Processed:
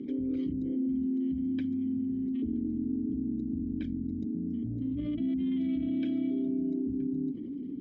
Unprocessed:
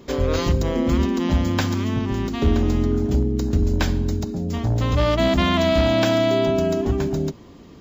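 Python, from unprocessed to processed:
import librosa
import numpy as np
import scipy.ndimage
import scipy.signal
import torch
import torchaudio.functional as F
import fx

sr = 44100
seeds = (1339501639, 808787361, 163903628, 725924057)

y = fx.envelope_sharpen(x, sr, power=2.0)
y = fx.vowel_filter(y, sr, vowel='i')
y = fx.env_flatten(y, sr, amount_pct=70)
y = y * 10.0 ** (-5.5 / 20.0)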